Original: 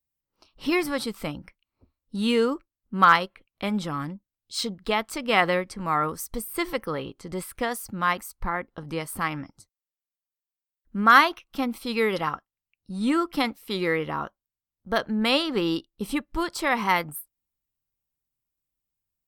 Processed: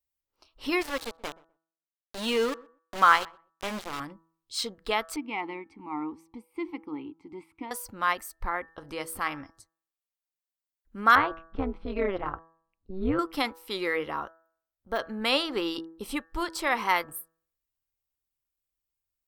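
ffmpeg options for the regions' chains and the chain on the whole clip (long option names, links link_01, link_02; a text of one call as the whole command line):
ffmpeg -i in.wav -filter_complex "[0:a]asettb=1/sr,asplit=3[link_01][link_02][link_03];[link_01]atrim=end=0.814[link_04];[link_02]atrim=start=0.81:end=4,asetpts=PTS-STARTPTS,afade=type=in:duration=0.004:curve=qsin,afade=type=out:start_time=3.186:duration=0.004:curve=qsin,aeval=exprs='val(0)*gte(abs(val(0)),0.0447)':channel_layout=same,highshelf=frequency=9700:gain=-8.5,asplit=2[link_05][link_06];[link_06]adelay=125,lowpass=frequency=1100:poles=1,volume=-22dB,asplit=2[link_07][link_08];[link_08]adelay=125,lowpass=frequency=1100:poles=1,volume=0.18[link_09];[link_05][link_07][link_09]amix=inputs=3:normalize=0,atrim=end_sample=140679[link_10];[link_03]atrim=start=3.996[link_11];[link_04][link_10]acrossfade=duration=0.004:curve1=hsin:curve2=qsin[link_12];[link_12][link_11]acrossfade=duration=0.004:curve1=qsin:curve2=hsin,asettb=1/sr,asplit=3[link_13][link_14][link_15];[link_13]atrim=end=5.164[link_16];[link_14]atrim=start=5.16:end=7.71,asetpts=PTS-STARTPTS,afade=type=in:duration=0.004:curve=qsin,afade=type=out:start_time=2.546:duration=0.004:curve=qsin,equalizer=frequency=100:width=0.53:gain=11.5,acontrast=27,asplit=3[link_17][link_18][link_19];[link_17]bandpass=frequency=300:width_type=q:width=8,volume=0dB[link_20];[link_18]bandpass=frequency=870:width_type=q:width=8,volume=-6dB[link_21];[link_19]bandpass=frequency=2240:width_type=q:width=8,volume=-9dB[link_22];[link_20][link_21][link_22]amix=inputs=3:normalize=0[link_23];[link_15]atrim=start=7.706[link_24];[link_16][link_23]acrossfade=duration=0.004:curve1=hsin:curve2=qsin[link_25];[link_25][link_24]acrossfade=duration=0.004:curve1=qsin:curve2=hsin,asettb=1/sr,asplit=3[link_26][link_27][link_28];[link_26]atrim=end=11.154[link_29];[link_27]atrim=start=11.15:end=13.19,asetpts=PTS-STARTPTS,afade=type=in:duration=0.004:curve=qsin,afade=type=out:start_time=2.036:duration=0.004:curve=qsin,lowpass=2700,aemphasis=mode=reproduction:type=riaa,tremolo=f=190:d=0.824[link_30];[link_28]atrim=start=13.186[link_31];[link_29][link_30]acrossfade=duration=0.004:curve1=hsin:curve2=qsin[link_32];[link_32][link_31]acrossfade=duration=0.004:curve1=qsin:curve2=hsin,asettb=1/sr,asplit=3[link_33][link_34][link_35];[link_33]atrim=end=14.204[link_36];[link_34]atrim=start=14.2:end=14.99,asetpts=PTS-STARTPTS,afade=type=in:duration=0.004:curve=qsin,afade=type=out:start_time=0.786:duration=0.004:curve=qsin,lowpass=frequency=1400:poles=1,aemphasis=mode=production:type=75fm,deesser=0.75[link_37];[link_35]atrim=start=14.986[link_38];[link_36][link_37]acrossfade=duration=0.004:curve1=hsin:curve2=qsin[link_39];[link_39][link_38]acrossfade=duration=0.004:curve1=qsin:curve2=hsin,equalizer=frequency=170:width_type=o:width=0.91:gain=-13,bandreject=frequency=163.4:width_type=h:width=4,bandreject=frequency=326.8:width_type=h:width=4,bandreject=frequency=490.2:width_type=h:width=4,bandreject=frequency=653.6:width_type=h:width=4,bandreject=frequency=817:width_type=h:width=4,bandreject=frequency=980.4:width_type=h:width=4,bandreject=frequency=1143.8:width_type=h:width=4,bandreject=frequency=1307.2:width_type=h:width=4,bandreject=frequency=1470.6:width_type=h:width=4,bandreject=frequency=1634:width_type=h:width=4,bandreject=frequency=1797.4:width_type=h:width=4,volume=-2dB" out.wav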